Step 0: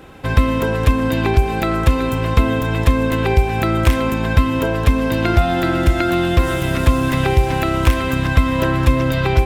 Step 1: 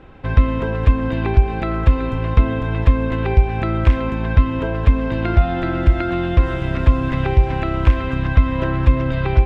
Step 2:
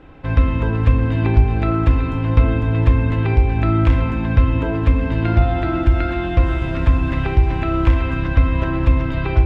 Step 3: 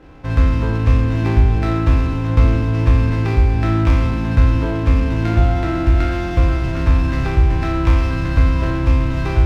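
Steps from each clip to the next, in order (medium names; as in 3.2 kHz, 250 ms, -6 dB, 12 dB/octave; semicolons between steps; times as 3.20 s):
low-pass 2.9 kHz 12 dB/octave; bass shelf 63 Hz +12 dB; trim -4.5 dB
FDN reverb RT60 1.1 s, low-frequency decay 1.2×, high-frequency decay 0.45×, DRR 4 dB; trim -1.5 dB
spectral sustain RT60 1.21 s; sliding maximum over 5 samples; trim -1.5 dB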